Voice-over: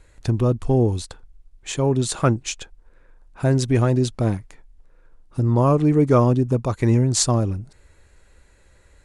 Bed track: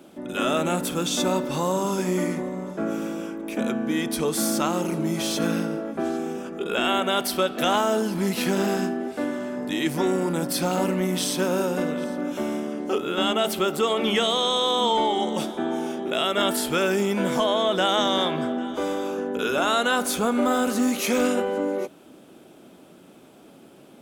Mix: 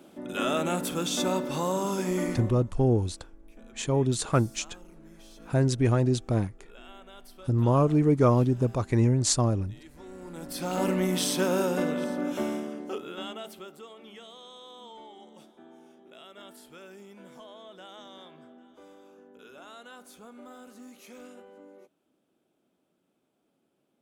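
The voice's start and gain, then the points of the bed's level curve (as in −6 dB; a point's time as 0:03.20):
2.10 s, −5.0 dB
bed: 0:02.40 −4 dB
0:02.81 −26.5 dB
0:09.94 −26.5 dB
0:10.88 −2 dB
0:12.41 −2 dB
0:13.96 −25.5 dB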